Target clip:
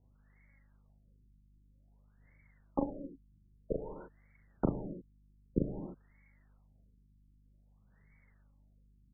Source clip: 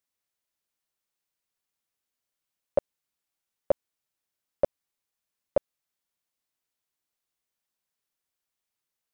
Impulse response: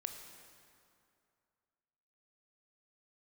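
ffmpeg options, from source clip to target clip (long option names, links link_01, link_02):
-filter_complex "[0:a]firequalizer=gain_entry='entry(130,0);entry(320,-14);entry(1300,-18);entry(2300,7)':delay=0.05:min_phase=1,acontrast=81,aeval=exprs='0.133*sin(PI/2*6.31*val(0)/0.133)':channel_layout=same,aphaser=in_gain=1:out_gain=1:delay=3.7:decay=0.63:speed=0.88:type=sinusoidal,aeval=exprs='val(0)+0.000562*(sin(2*PI*50*n/s)+sin(2*PI*2*50*n/s)/2+sin(2*PI*3*50*n/s)/3+sin(2*PI*4*50*n/s)/4+sin(2*PI*5*50*n/s)/5)':channel_layout=same,asplit=2[link_01][link_02];[link_02]adelay=39,volume=-3dB[link_03];[link_01][link_03]amix=inputs=2:normalize=0[link_04];[1:a]atrim=start_sample=2205,afade=type=out:start_time=0.37:duration=0.01,atrim=end_sample=16758[link_05];[link_04][link_05]afir=irnorm=-1:irlink=0,afftfilt=real='re*lt(b*sr/1024,370*pow(2300/370,0.5+0.5*sin(2*PI*0.52*pts/sr)))':imag='im*lt(b*sr/1024,370*pow(2300/370,0.5+0.5*sin(2*PI*0.52*pts/sr)))':win_size=1024:overlap=0.75"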